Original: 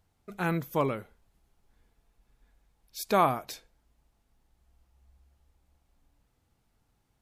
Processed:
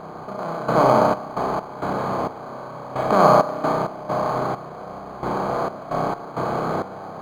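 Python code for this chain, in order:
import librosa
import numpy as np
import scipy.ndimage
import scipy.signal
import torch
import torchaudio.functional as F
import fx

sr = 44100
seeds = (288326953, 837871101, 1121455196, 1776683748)

y = fx.bin_compress(x, sr, power=0.2)
y = scipy.signal.sosfilt(scipy.signal.butter(16, 11000.0, 'lowpass', fs=sr, output='sos'), y)
y = fx.peak_eq(y, sr, hz=4500.0, db=-13.0, octaves=1.6)
y = fx.hum_notches(y, sr, base_hz=60, count=7)
y = fx.rev_spring(y, sr, rt60_s=1.5, pass_ms=(31,), chirp_ms=65, drr_db=-0.5)
y = fx.step_gate(y, sr, bpm=66, pattern='...xx.x.xx', floor_db=-12.0, edge_ms=4.5)
y = np.interp(np.arange(len(y)), np.arange(len(y))[::8], y[::8])
y = y * librosa.db_to_amplitude(3.5)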